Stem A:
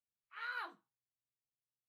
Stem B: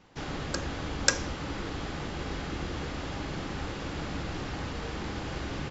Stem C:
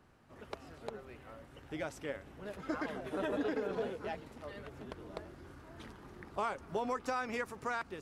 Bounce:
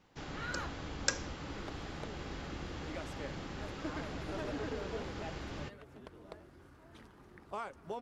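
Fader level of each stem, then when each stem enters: +0.5, −8.0, −5.5 decibels; 0.00, 0.00, 1.15 seconds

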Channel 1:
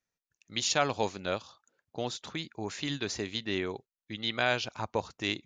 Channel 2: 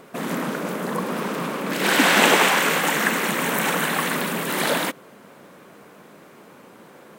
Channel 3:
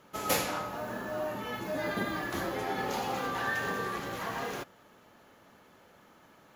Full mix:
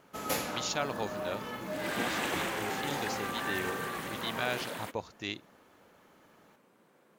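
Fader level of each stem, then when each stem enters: −5.5, −18.5, −4.0 decibels; 0.00, 0.00, 0.00 seconds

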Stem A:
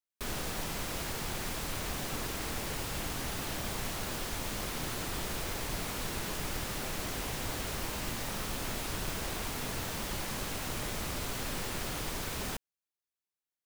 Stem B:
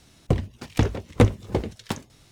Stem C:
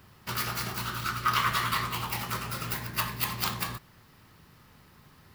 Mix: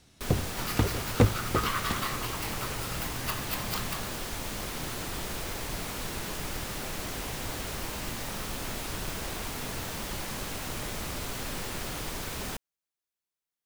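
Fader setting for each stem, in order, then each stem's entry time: +1.0, −5.0, −5.0 decibels; 0.00, 0.00, 0.30 seconds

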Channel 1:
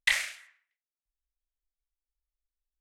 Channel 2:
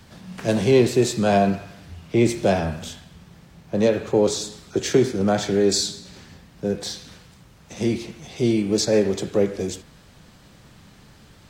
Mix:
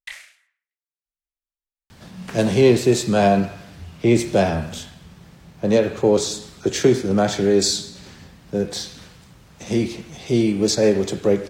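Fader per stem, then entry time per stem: −10.5, +2.0 decibels; 0.00, 1.90 seconds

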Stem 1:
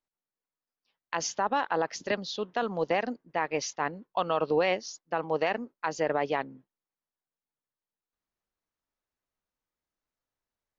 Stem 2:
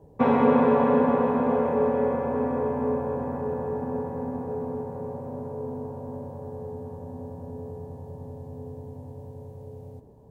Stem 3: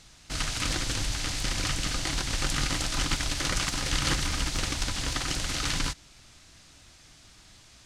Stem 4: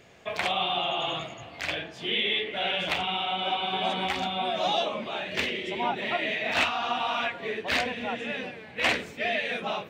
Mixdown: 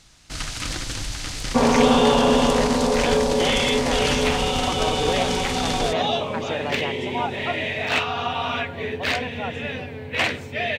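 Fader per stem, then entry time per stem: −1.5, +2.5, +0.5, +2.5 decibels; 0.50, 1.35, 0.00, 1.35 seconds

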